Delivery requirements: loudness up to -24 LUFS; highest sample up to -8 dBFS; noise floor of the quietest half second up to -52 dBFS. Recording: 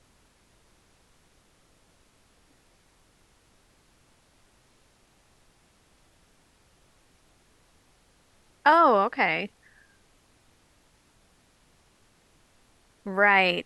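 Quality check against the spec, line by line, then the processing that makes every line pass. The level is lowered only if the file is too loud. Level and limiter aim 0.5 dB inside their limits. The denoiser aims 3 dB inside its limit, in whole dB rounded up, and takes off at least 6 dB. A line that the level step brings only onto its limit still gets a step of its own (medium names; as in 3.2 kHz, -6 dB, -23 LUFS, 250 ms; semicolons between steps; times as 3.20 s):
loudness -22.0 LUFS: fail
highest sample -6.0 dBFS: fail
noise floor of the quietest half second -63 dBFS: pass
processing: trim -2.5 dB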